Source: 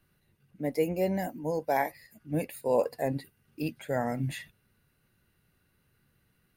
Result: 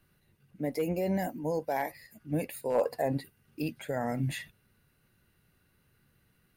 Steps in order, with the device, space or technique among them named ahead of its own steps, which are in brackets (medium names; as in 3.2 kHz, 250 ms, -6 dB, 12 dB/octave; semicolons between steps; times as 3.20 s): clipper into limiter (hard clipper -18 dBFS, distortion -25 dB; peak limiter -24 dBFS, peak gain reduction 6 dB); 2.75–3.18 s: peaking EQ 820 Hz +5.5 dB 1.7 oct; trim +1.5 dB